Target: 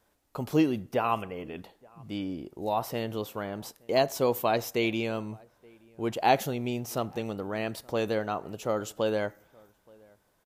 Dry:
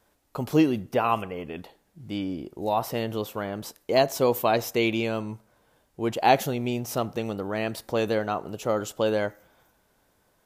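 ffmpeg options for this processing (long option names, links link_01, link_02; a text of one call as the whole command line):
ffmpeg -i in.wav -filter_complex "[0:a]asplit=2[link_01][link_02];[link_02]adelay=874.6,volume=-27dB,highshelf=frequency=4000:gain=-19.7[link_03];[link_01][link_03]amix=inputs=2:normalize=0,volume=-3.5dB" out.wav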